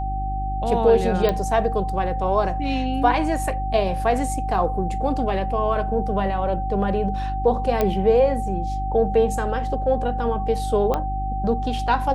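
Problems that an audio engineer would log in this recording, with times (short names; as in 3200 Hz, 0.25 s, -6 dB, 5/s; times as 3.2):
hum 50 Hz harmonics 7 -27 dBFS
tone 770 Hz -27 dBFS
1.29 pop -10 dBFS
7.81 pop -8 dBFS
10.94 pop -11 dBFS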